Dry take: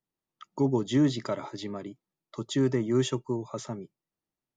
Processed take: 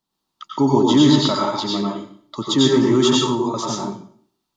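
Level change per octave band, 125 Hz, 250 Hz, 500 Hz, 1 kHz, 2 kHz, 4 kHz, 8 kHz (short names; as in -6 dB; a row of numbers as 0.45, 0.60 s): +7.5, +11.5, +10.5, +17.5, +10.5, +18.5, +14.5 dB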